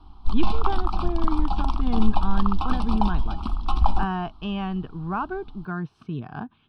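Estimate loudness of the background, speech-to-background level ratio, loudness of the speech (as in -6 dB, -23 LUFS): -28.5 LUFS, -1.5 dB, -30.0 LUFS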